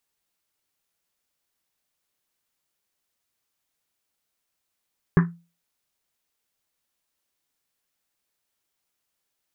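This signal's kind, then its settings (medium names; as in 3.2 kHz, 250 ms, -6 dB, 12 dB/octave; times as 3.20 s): Risset drum, pitch 170 Hz, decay 0.32 s, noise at 1.4 kHz, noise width 870 Hz, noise 20%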